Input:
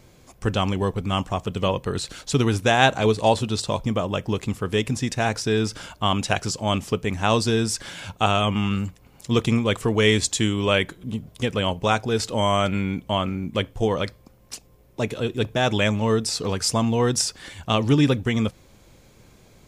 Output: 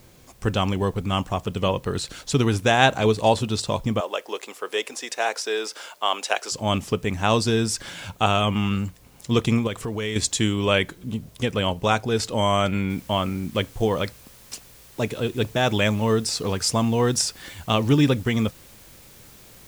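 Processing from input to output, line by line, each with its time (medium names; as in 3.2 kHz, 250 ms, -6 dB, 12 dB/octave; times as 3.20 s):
4.00–6.52 s: high-pass 420 Hz 24 dB/octave
9.67–10.16 s: compression 3:1, threshold -27 dBFS
12.90 s: noise floor step -59 dB -50 dB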